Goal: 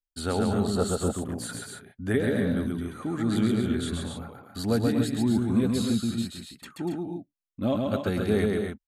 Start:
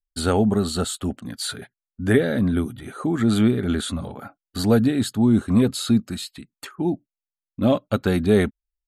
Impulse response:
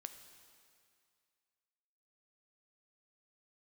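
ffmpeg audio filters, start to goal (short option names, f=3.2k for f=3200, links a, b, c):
-filter_complex "[0:a]asettb=1/sr,asplit=3[a][b][c];[a]atrim=end=0.754[d];[b]atrim=start=0.75:end=1.53,asetpts=PTS-STARTPTS,afade=t=in:d=0.004:c=qsin,afade=t=out:st=0.776:d=0.004:c=qsin,equalizer=f=125:t=o:w=1:g=6,equalizer=f=500:t=o:w=1:g=9,equalizer=f=1k:t=o:w=1:g=6,equalizer=f=4k:t=o:w=1:g=-8,equalizer=f=8k:t=o:w=1:g=3[e];[c]atrim=start=1.526[f];[d][e]acrossfade=d=0.004:c1=hsin:c2=qsin[g];[g][f]acrossfade=d=0.004:c1=qsin:c2=hsin,aecho=1:1:131.2|242|277:0.708|0.398|0.398,volume=-8dB"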